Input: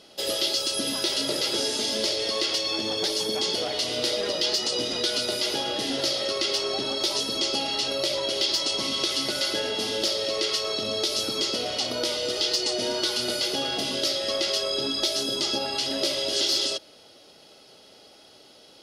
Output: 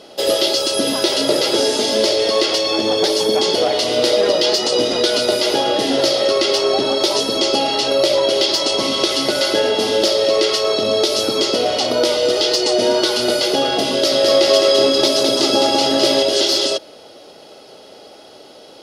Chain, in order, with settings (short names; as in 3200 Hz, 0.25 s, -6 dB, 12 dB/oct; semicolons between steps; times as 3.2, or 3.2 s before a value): bell 560 Hz +8.5 dB 2.5 oct; 13.91–16.23 bouncing-ball echo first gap 0.21 s, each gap 0.9×, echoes 5; gain +6 dB